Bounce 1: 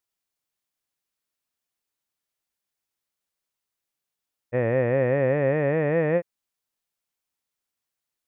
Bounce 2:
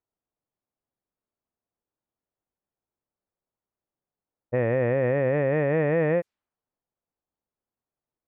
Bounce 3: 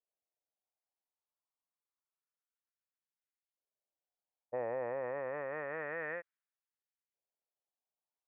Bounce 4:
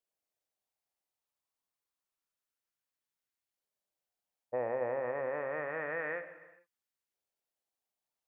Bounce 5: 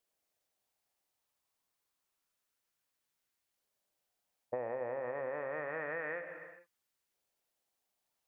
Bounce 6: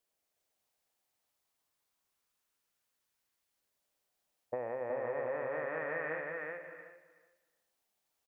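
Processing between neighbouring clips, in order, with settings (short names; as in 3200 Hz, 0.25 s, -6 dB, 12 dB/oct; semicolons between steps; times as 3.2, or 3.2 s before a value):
low-pass opened by the level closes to 800 Hz, open at -19 dBFS; limiter -19 dBFS, peak gain reduction 7 dB; gain +4.5 dB
LFO band-pass saw up 0.28 Hz 560–2300 Hz; gain -3.5 dB
non-linear reverb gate 0.47 s falling, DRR 9 dB; gain +2.5 dB
compressor 5:1, threshold -42 dBFS, peak gain reduction 11.5 dB; gain +6 dB
feedback echo 0.372 s, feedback 16%, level -3 dB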